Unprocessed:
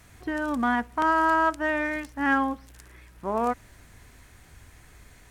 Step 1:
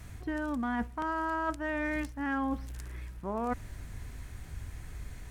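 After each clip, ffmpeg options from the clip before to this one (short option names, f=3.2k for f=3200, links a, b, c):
-af "lowshelf=f=200:g=11.5,areverse,acompressor=threshold=-30dB:ratio=6,areverse"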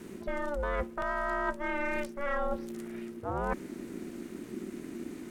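-af "aeval=exprs='val(0)*sin(2*PI*290*n/s)':c=same,volume=3.5dB"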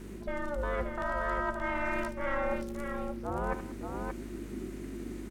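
-filter_complex "[0:a]aeval=exprs='val(0)+0.00562*(sin(2*PI*50*n/s)+sin(2*PI*2*50*n/s)/2+sin(2*PI*3*50*n/s)/3+sin(2*PI*4*50*n/s)/4+sin(2*PI*5*50*n/s)/5)':c=same,asplit=2[a][b];[b]aecho=0:1:75|189|578:0.282|0.126|0.531[c];[a][c]amix=inputs=2:normalize=0,volume=-1.5dB"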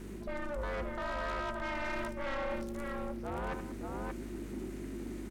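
-af "asoftclip=type=tanh:threshold=-31.5dB"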